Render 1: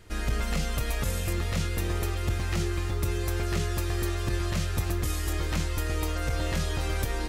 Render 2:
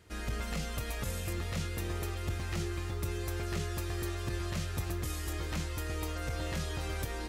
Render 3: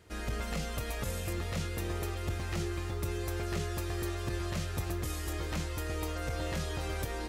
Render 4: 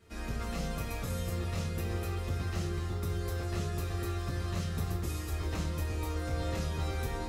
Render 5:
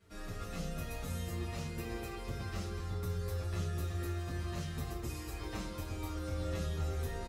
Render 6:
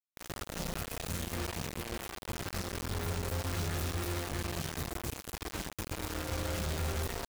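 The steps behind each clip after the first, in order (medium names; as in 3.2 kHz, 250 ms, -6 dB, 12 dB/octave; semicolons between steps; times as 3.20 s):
high-pass 49 Hz; trim -6 dB
peaking EQ 570 Hz +3 dB 1.7 oct
reverberation RT60 0.45 s, pre-delay 4 ms, DRR -4 dB; trim -7 dB
endless flanger 7.4 ms -0.32 Hz; trim -1 dB
bit crusher 6-bit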